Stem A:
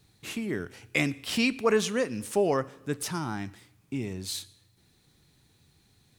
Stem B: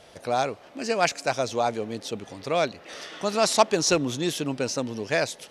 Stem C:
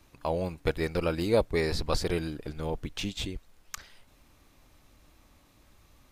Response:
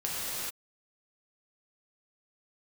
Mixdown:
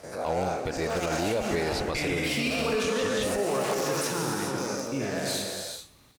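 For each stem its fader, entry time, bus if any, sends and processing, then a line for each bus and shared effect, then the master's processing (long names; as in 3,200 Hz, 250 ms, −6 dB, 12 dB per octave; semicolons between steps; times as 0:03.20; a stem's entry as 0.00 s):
−1.5 dB, 1.00 s, bus A, send −4.5 dB, no processing
−3.5 dB, 0.00 s, bus A, send −19 dB, every bin's largest magnitude spread in time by 240 ms; parametric band 3,100 Hz −14.5 dB 0.74 octaves; wave folding −13 dBFS; automatic ducking −14 dB, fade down 1.85 s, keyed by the third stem
+2.5 dB, 0.00 s, no bus, no send, low-shelf EQ 120 Hz +7 dB
bus A: 0.0 dB, leveller curve on the samples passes 1; brickwall limiter −26 dBFS, peak gain reduction 13 dB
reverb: on, pre-delay 3 ms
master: high-pass filter 190 Hz 6 dB per octave; brickwall limiter −18.5 dBFS, peak gain reduction 10 dB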